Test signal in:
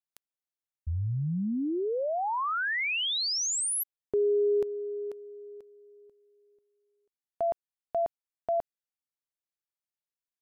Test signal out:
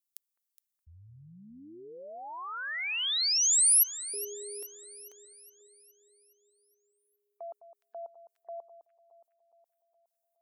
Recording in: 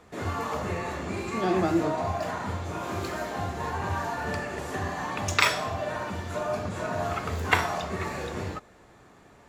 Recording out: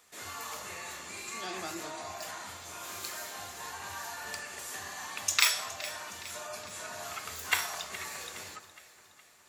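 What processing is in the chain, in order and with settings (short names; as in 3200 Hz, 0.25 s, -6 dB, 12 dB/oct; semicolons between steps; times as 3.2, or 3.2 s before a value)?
pre-emphasis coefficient 0.97; echo with dull and thin repeats by turns 0.208 s, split 1500 Hz, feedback 71%, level -12.5 dB; spectral gate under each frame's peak -30 dB strong; gain +6 dB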